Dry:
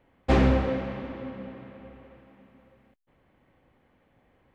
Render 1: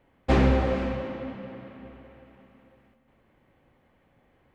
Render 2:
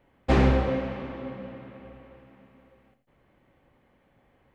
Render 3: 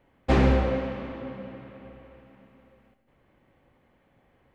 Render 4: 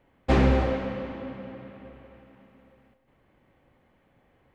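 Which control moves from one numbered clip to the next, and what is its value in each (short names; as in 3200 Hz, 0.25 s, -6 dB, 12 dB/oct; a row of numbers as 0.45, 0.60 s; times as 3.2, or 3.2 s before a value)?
non-linear reverb, gate: 0.53, 0.13, 0.21, 0.33 s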